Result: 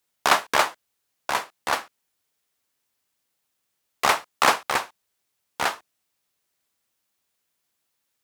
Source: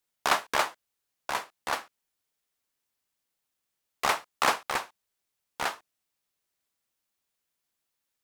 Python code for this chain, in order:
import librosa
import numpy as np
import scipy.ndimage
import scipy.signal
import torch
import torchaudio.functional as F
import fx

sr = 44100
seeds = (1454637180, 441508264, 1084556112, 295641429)

y = scipy.signal.sosfilt(scipy.signal.butter(2, 52.0, 'highpass', fs=sr, output='sos'), x)
y = y * 10.0 ** (6.0 / 20.0)